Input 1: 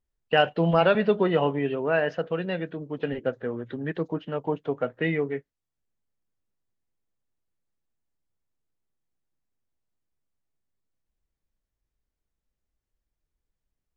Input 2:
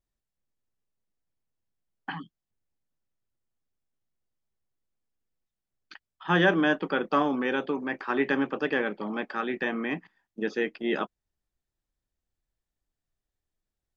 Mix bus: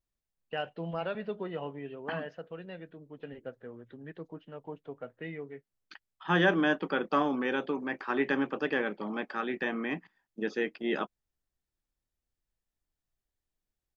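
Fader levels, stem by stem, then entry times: -14.5 dB, -3.0 dB; 0.20 s, 0.00 s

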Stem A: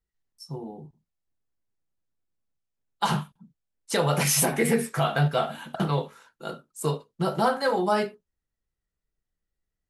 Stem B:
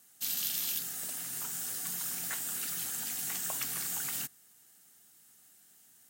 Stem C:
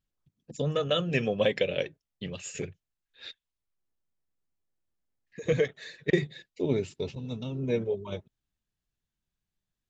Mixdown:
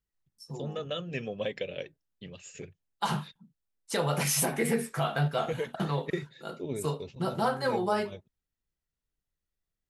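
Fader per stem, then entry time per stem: -5.0 dB, mute, -8.0 dB; 0.00 s, mute, 0.00 s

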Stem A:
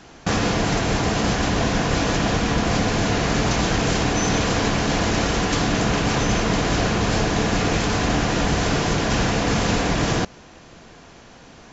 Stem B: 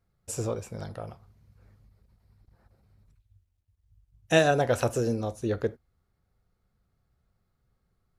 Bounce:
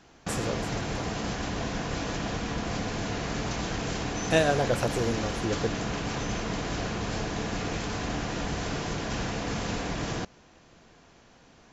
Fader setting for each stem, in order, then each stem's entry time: -11.0 dB, -2.0 dB; 0.00 s, 0.00 s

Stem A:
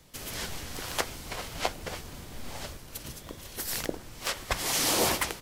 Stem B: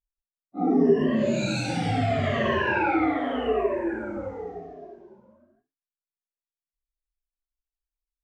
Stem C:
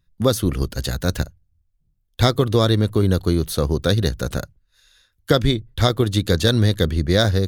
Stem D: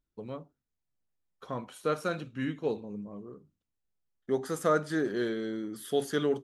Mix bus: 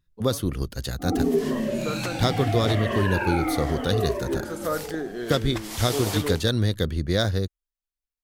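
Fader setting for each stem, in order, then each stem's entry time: -6.0 dB, -3.0 dB, -6.0 dB, -2.0 dB; 1.05 s, 0.45 s, 0.00 s, 0.00 s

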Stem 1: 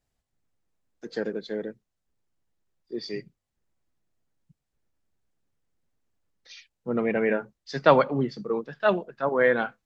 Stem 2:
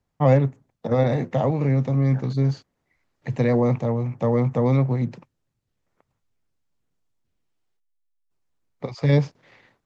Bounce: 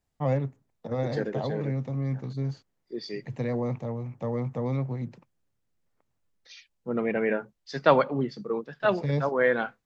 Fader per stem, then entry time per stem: -2.0 dB, -9.5 dB; 0.00 s, 0.00 s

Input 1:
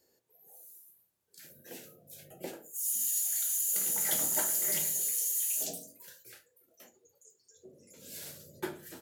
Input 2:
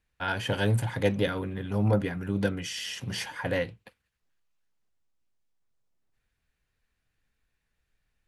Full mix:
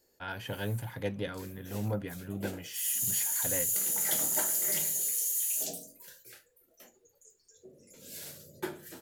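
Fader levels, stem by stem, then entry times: +0.5 dB, -9.0 dB; 0.00 s, 0.00 s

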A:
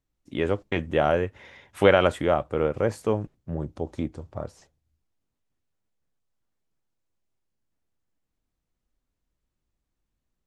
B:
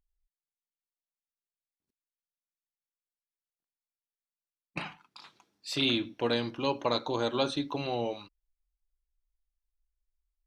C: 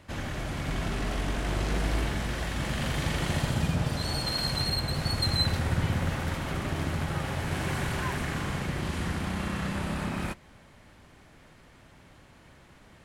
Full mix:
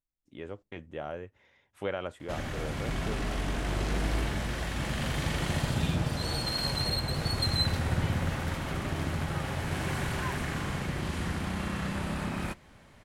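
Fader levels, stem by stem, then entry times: -16.0 dB, -14.5 dB, -1.5 dB; 0.00 s, 0.00 s, 2.20 s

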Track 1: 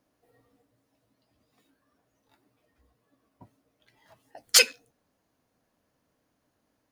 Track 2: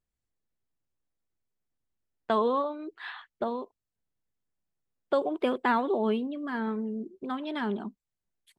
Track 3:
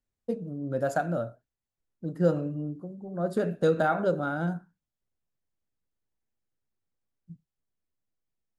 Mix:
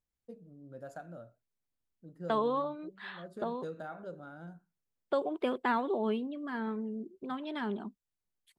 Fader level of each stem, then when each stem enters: mute, -4.5 dB, -18.0 dB; mute, 0.00 s, 0.00 s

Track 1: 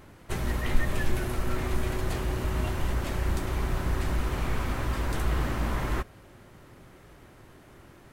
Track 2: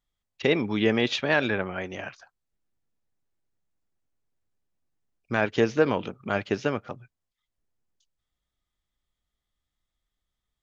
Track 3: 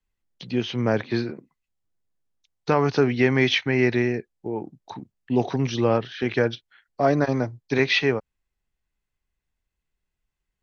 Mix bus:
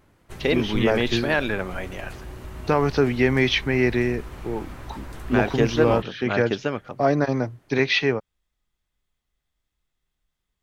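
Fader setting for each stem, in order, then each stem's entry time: -8.5 dB, +0.5 dB, 0.0 dB; 0.00 s, 0.00 s, 0.00 s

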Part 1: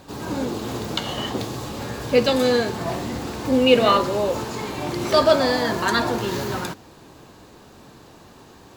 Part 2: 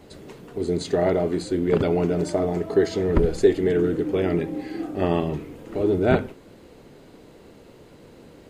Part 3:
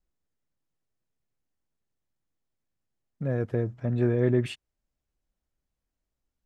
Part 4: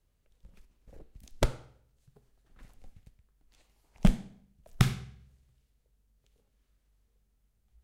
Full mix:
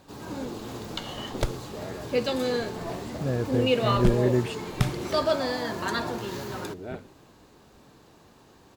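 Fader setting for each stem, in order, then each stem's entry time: -8.5 dB, -18.0 dB, 0.0 dB, -1.0 dB; 0.00 s, 0.80 s, 0.00 s, 0.00 s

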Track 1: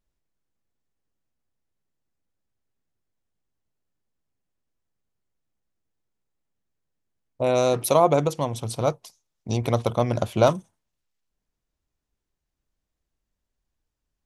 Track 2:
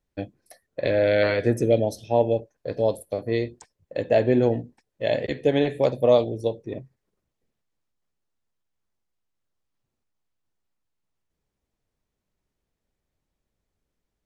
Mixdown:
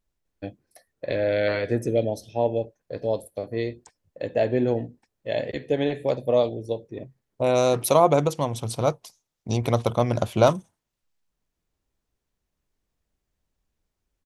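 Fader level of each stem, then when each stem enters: +0.5 dB, -3.0 dB; 0.00 s, 0.25 s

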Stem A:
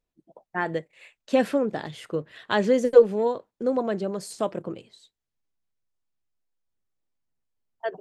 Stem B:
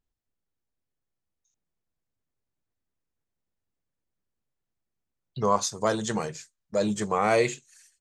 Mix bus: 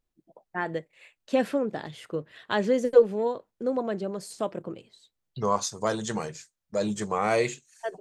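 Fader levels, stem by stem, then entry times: -3.0 dB, -2.0 dB; 0.00 s, 0.00 s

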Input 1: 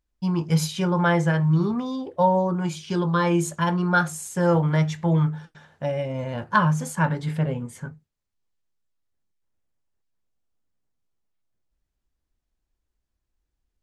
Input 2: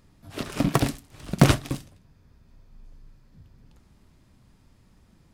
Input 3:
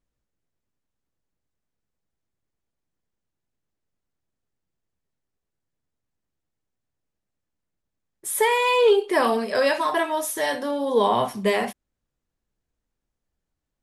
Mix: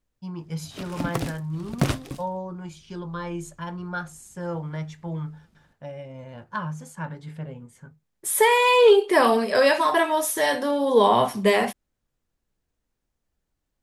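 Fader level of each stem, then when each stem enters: -11.0 dB, -6.0 dB, +2.5 dB; 0.00 s, 0.40 s, 0.00 s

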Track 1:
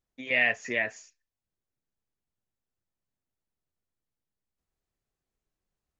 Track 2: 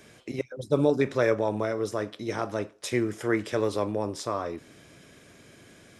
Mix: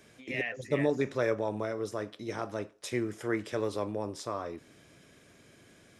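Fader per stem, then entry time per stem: -11.0 dB, -5.5 dB; 0.00 s, 0.00 s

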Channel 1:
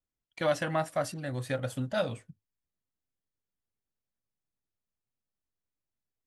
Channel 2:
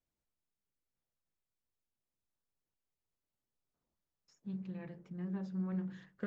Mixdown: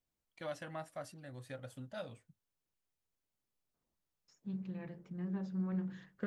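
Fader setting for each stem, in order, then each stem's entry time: -14.5 dB, +0.5 dB; 0.00 s, 0.00 s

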